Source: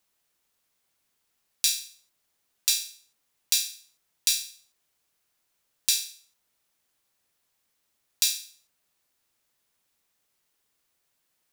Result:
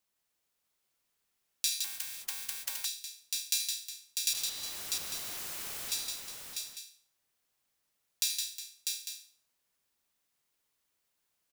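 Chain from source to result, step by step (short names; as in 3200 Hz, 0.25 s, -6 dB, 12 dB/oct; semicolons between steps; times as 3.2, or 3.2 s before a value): 4.33–5.92 infinite clipping; tapped delay 78/164/362/647/850 ms -11/-5/-13/-4/-11 dB; 1.84–2.85 spectral compressor 10:1; gain -7.5 dB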